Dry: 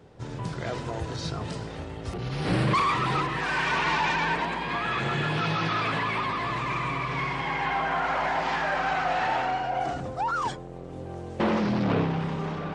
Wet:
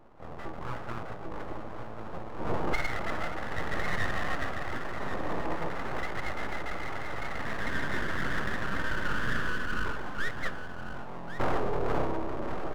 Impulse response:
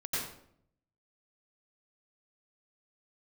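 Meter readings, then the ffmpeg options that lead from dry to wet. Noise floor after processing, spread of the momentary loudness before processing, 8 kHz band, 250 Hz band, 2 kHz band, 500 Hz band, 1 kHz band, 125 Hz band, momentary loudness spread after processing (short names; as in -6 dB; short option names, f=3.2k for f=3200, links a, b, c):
-38 dBFS, 11 LU, -5.5 dB, -7.5 dB, -4.5 dB, -4.0 dB, -9.5 dB, -8.5 dB, 10 LU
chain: -filter_complex "[0:a]afftfilt=real='re*between(b*sr/4096,150,1100)':imag='im*between(b*sr/4096,150,1100)':win_size=4096:overlap=0.75,aeval=exprs='abs(val(0))':c=same,asplit=2[a][b];[b]aecho=0:1:1095:0.299[c];[a][c]amix=inputs=2:normalize=0"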